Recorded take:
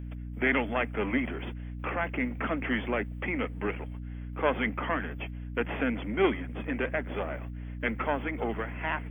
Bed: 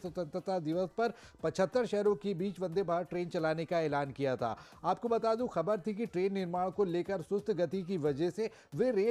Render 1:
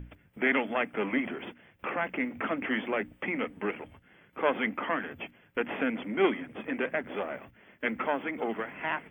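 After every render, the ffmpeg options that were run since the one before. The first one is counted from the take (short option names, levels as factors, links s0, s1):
-af "bandreject=f=60:t=h:w=6,bandreject=f=120:t=h:w=6,bandreject=f=180:t=h:w=6,bandreject=f=240:t=h:w=6,bandreject=f=300:t=h:w=6"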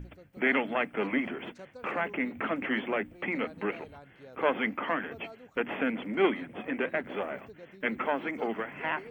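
-filter_complex "[1:a]volume=0.133[s0];[0:a][s0]amix=inputs=2:normalize=0"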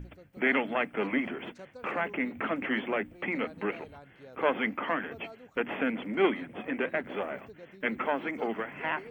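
-af anull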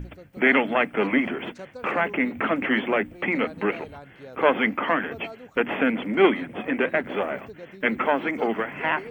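-af "volume=2.37"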